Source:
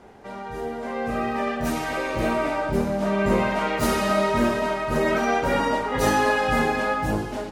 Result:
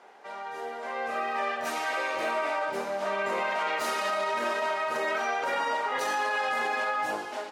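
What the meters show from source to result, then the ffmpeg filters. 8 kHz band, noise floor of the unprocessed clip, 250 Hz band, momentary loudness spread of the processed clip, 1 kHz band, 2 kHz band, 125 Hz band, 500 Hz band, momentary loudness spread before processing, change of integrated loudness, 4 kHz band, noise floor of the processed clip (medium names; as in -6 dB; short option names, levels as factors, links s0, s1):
-6.0 dB, -35 dBFS, -18.5 dB, 7 LU, -3.5 dB, -3.0 dB, under -25 dB, -7.5 dB, 8 LU, -6.0 dB, -3.5 dB, -39 dBFS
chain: -af "highpass=680,highshelf=f=9600:g=-10.5,alimiter=limit=0.0944:level=0:latency=1:release=30"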